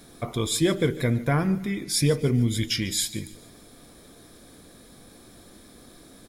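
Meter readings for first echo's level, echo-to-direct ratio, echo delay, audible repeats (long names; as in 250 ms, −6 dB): −18.5 dB, −17.5 dB, 147 ms, 3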